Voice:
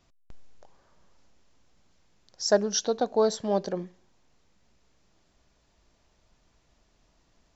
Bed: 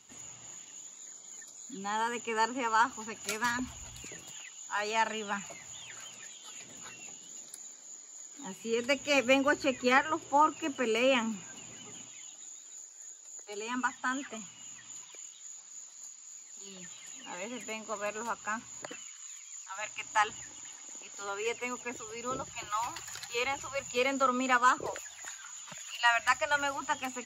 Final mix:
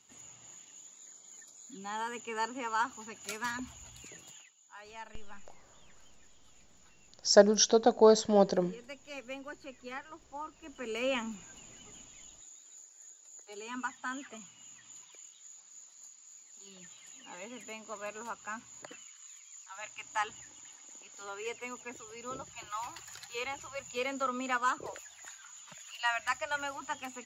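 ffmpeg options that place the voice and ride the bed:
-filter_complex "[0:a]adelay=4850,volume=2dB[a];[1:a]volume=7dB,afade=t=out:st=4.3:d=0.23:silence=0.237137,afade=t=in:st=10.61:d=0.45:silence=0.251189[b];[a][b]amix=inputs=2:normalize=0"

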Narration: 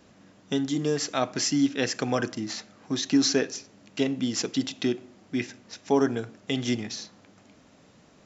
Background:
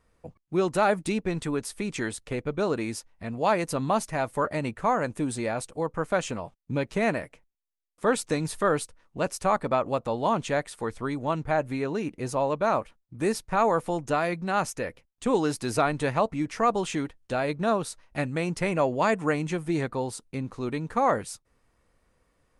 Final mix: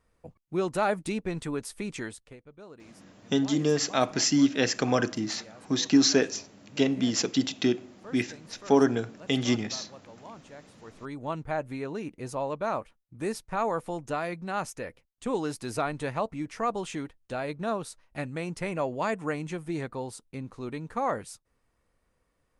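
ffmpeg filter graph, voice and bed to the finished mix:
-filter_complex "[0:a]adelay=2800,volume=1.5dB[a];[1:a]volume=12.5dB,afade=t=out:st=1.9:d=0.49:silence=0.125893,afade=t=in:st=10.8:d=0.45:silence=0.158489[b];[a][b]amix=inputs=2:normalize=0"

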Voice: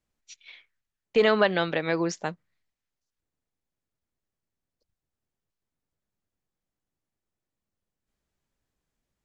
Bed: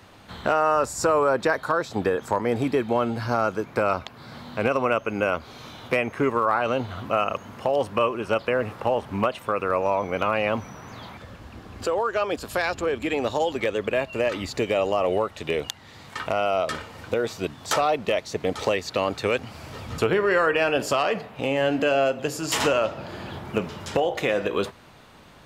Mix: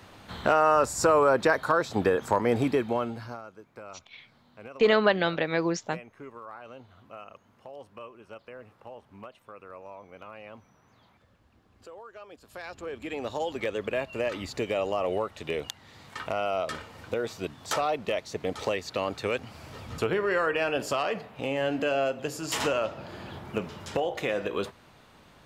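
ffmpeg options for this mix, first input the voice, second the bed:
-filter_complex "[0:a]adelay=3650,volume=-0.5dB[a];[1:a]volume=15.5dB,afade=t=out:st=2.57:d=0.85:silence=0.0891251,afade=t=in:st=12.4:d=1.28:silence=0.158489[b];[a][b]amix=inputs=2:normalize=0"

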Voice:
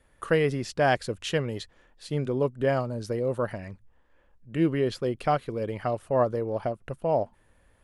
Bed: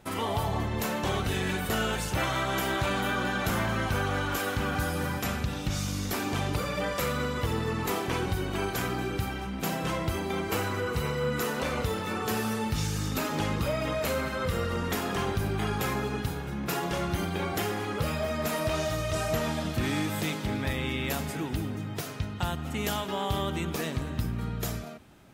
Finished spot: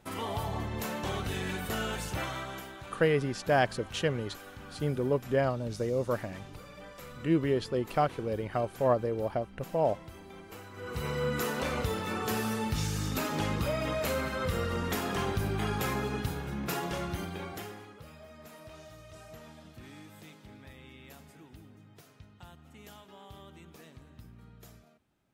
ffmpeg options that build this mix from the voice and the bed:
-filter_complex "[0:a]adelay=2700,volume=-2.5dB[a];[1:a]volume=10.5dB,afade=t=out:st=2.1:d=0.62:silence=0.237137,afade=t=in:st=10.73:d=0.44:silence=0.16788,afade=t=out:st=16.58:d=1.38:silence=0.11885[b];[a][b]amix=inputs=2:normalize=0"

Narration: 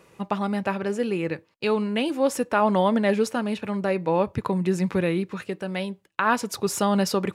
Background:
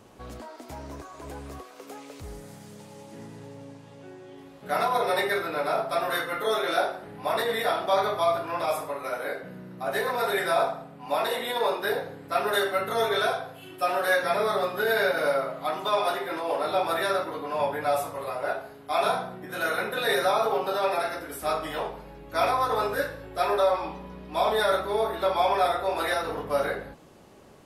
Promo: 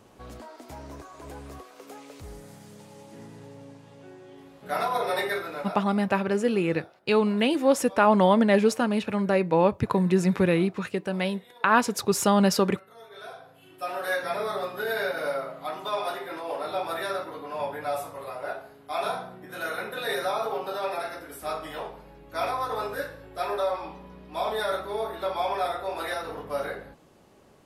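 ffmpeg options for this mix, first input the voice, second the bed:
-filter_complex "[0:a]adelay=5450,volume=1.5dB[a];[1:a]volume=17dB,afade=t=out:st=5.3:d=0.65:silence=0.0841395,afade=t=in:st=13.1:d=1.04:silence=0.112202[b];[a][b]amix=inputs=2:normalize=0"

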